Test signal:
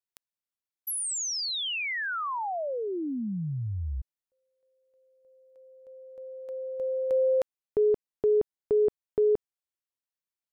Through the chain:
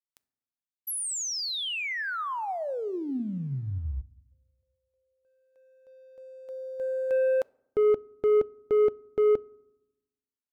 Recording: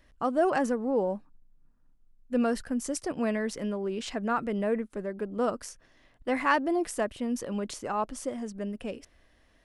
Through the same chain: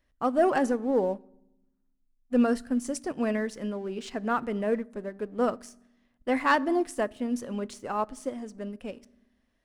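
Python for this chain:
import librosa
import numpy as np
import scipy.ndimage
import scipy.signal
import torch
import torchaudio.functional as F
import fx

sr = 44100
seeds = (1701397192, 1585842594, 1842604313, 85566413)

y = fx.leveller(x, sr, passes=1)
y = fx.rev_fdn(y, sr, rt60_s=0.87, lf_ratio=1.6, hf_ratio=0.55, size_ms=23.0, drr_db=16.5)
y = fx.upward_expand(y, sr, threshold_db=-37.0, expansion=1.5)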